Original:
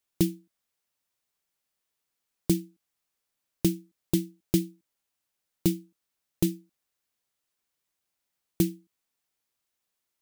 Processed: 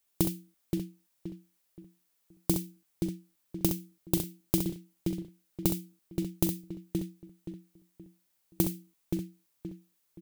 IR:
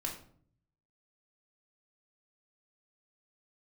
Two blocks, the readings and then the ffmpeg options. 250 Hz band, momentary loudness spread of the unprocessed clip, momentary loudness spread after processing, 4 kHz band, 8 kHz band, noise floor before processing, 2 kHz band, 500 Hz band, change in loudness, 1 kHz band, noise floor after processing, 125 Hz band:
−2.5 dB, 11 LU, 16 LU, −2.0 dB, +0.5 dB, −83 dBFS, −2.0 dB, −2.0 dB, −4.0 dB, can't be measured, −75 dBFS, −1.5 dB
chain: -filter_complex "[0:a]asplit=2[link_01][link_02];[link_02]adelay=524,lowpass=frequency=2200:poles=1,volume=-8.5dB,asplit=2[link_03][link_04];[link_04]adelay=524,lowpass=frequency=2200:poles=1,volume=0.32,asplit=2[link_05][link_06];[link_06]adelay=524,lowpass=frequency=2200:poles=1,volume=0.32,asplit=2[link_07][link_08];[link_08]adelay=524,lowpass=frequency=2200:poles=1,volume=0.32[link_09];[link_03][link_05][link_07][link_09]amix=inputs=4:normalize=0[link_10];[link_01][link_10]amix=inputs=2:normalize=0,acompressor=threshold=-26dB:ratio=6,highshelf=frequency=8800:gain=8,asplit=2[link_11][link_12];[link_12]aecho=0:1:43|65:0.188|0.447[link_13];[link_11][link_13]amix=inputs=2:normalize=0,volume=2dB"

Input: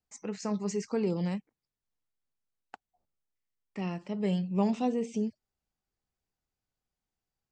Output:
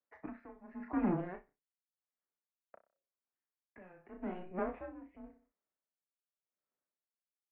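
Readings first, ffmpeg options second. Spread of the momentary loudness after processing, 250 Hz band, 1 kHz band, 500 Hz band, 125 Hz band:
22 LU, −9.0 dB, −5.5 dB, −10.0 dB, −12.5 dB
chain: -filter_complex "[0:a]agate=range=-13dB:threshold=-56dB:ratio=16:detection=peak,asplit=2[link_01][link_02];[link_02]acompressor=threshold=-40dB:ratio=6,volume=2dB[link_03];[link_01][link_03]amix=inputs=2:normalize=0,asoftclip=type=tanh:threshold=-26.5dB,asplit=2[link_04][link_05];[link_05]adelay=33,volume=-6dB[link_06];[link_04][link_06]amix=inputs=2:normalize=0,aecho=1:1:62|124|186:0.188|0.0565|0.017,highpass=frequency=410:width_type=q:width=0.5412,highpass=frequency=410:width_type=q:width=1.307,lowpass=frequency=2200:width_type=q:width=0.5176,lowpass=frequency=2200:width_type=q:width=0.7071,lowpass=frequency=2200:width_type=q:width=1.932,afreqshift=-180,aeval=exprs='val(0)*pow(10,-20*(0.5-0.5*cos(2*PI*0.89*n/s))/20)':channel_layout=same,volume=4.5dB"

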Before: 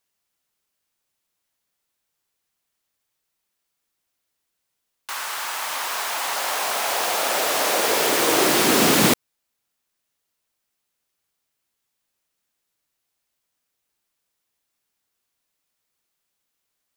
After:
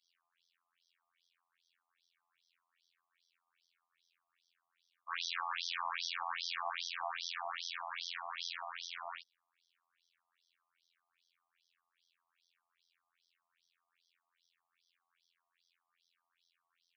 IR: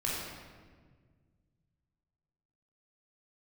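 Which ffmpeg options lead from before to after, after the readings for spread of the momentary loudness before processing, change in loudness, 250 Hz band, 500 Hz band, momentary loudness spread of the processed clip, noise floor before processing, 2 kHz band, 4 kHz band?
11 LU, −20.0 dB, below −40 dB, −29.5 dB, 6 LU, −78 dBFS, −17.5 dB, −16.5 dB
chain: -filter_complex "[0:a]acrossover=split=190|990|2300[link_01][link_02][link_03][link_04];[link_01]acompressor=threshold=-44dB:ratio=4[link_05];[link_02]acompressor=threshold=-26dB:ratio=4[link_06];[link_03]acompressor=threshold=-41dB:ratio=4[link_07];[link_04]acompressor=threshold=-30dB:ratio=4[link_08];[link_05][link_06][link_07][link_08]amix=inputs=4:normalize=0[link_09];[1:a]atrim=start_sample=2205,atrim=end_sample=3528[link_10];[link_09][link_10]afir=irnorm=-1:irlink=0,asubboost=boost=5.5:cutoff=76,areverse,acompressor=threshold=-31dB:ratio=12,areverse,lowshelf=frequency=300:width_type=q:width=3:gain=11.5,aresample=16000,asoftclip=type=tanh:threshold=-31dB,aresample=44100,afftfilt=real='hypot(re,im)*cos(PI*b)':imag='0':win_size=2048:overlap=0.75,afftfilt=real='re*between(b*sr/1024,860*pow(4500/860,0.5+0.5*sin(2*PI*2.5*pts/sr))/1.41,860*pow(4500/860,0.5+0.5*sin(2*PI*2.5*pts/sr))*1.41)':imag='im*between(b*sr/1024,860*pow(4500/860,0.5+0.5*sin(2*PI*2.5*pts/sr))/1.41,860*pow(4500/860,0.5+0.5*sin(2*PI*2.5*pts/sr))*1.41)':win_size=1024:overlap=0.75,volume=7.5dB"

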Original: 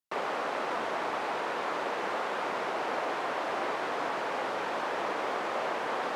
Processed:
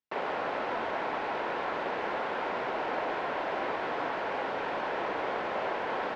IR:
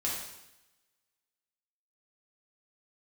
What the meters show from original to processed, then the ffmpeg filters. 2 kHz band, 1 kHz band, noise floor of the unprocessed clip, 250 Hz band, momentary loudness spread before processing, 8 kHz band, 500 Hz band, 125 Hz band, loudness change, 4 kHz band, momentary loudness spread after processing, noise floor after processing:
0.0 dB, −0.5 dB, −34 dBFS, +0.5 dB, 0 LU, below −10 dB, +0.5 dB, +2.5 dB, −0.5 dB, −2.5 dB, 1 LU, −34 dBFS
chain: -filter_complex "[0:a]lowpass=3600,bandreject=frequency=1200:width=11,asplit=4[link_01][link_02][link_03][link_04];[link_02]adelay=88,afreqshift=-130,volume=-13dB[link_05];[link_03]adelay=176,afreqshift=-260,volume=-22.4dB[link_06];[link_04]adelay=264,afreqshift=-390,volume=-31.7dB[link_07];[link_01][link_05][link_06][link_07]amix=inputs=4:normalize=0"

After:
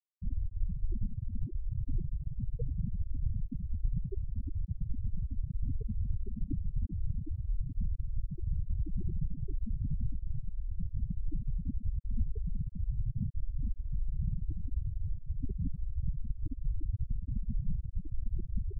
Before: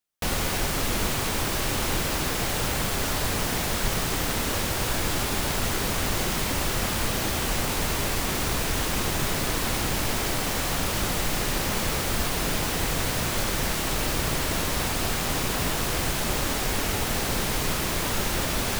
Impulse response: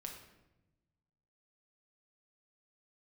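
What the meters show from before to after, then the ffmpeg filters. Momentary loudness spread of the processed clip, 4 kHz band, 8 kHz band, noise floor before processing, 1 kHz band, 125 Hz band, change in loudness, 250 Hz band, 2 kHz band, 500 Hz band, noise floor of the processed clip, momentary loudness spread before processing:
3 LU, below −40 dB, below −40 dB, −28 dBFS, below −40 dB, −4.5 dB, −13.0 dB, −13.0 dB, below −40 dB, −27.5 dB, −46 dBFS, 0 LU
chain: -filter_complex "[0:a]aexciter=amount=2.2:drive=0.9:freq=2500,aeval=exprs='0.141*(abs(mod(val(0)/0.141+3,4)-2)-1)':channel_layout=same,asplit=2[link_01][link_02];[link_02]aecho=0:1:55|89|378:0.141|0.178|0.158[link_03];[link_01][link_03]amix=inputs=2:normalize=0,afftfilt=real='re*gte(hypot(re,im),0.224)':imag='im*gte(hypot(re,im),0.224)':win_size=1024:overlap=0.75,asuperstop=centerf=1700:order=4:qfactor=1.2,volume=1dB"

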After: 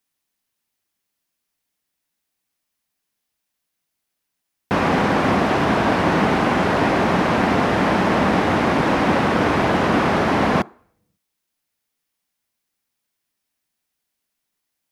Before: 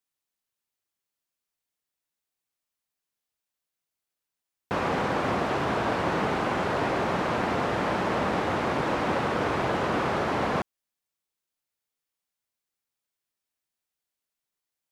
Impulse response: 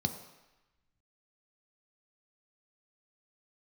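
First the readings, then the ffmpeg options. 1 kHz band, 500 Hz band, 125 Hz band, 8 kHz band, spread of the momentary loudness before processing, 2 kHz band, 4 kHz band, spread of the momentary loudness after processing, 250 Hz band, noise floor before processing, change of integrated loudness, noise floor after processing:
+8.0 dB, +7.5 dB, +9.5 dB, +8.0 dB, 1 LU, +8.5 dB, +8.5 dB, 1 LU, +11.5 dB, below −85 dBFS, +8.5 dB, −79 dBFS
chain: -filter_complex "[0:a]asplit=2[link_01][link_02];[1:a]atrim=start_sample=2205,asetrate=74970,aresample=44100[link_03];[link_02][link_03]afir=irnorm=-1:irlink=0,volume=-17dB[link_04];[link_01][link_04]amix=inputs=2:normalize=0,volume=9dB"

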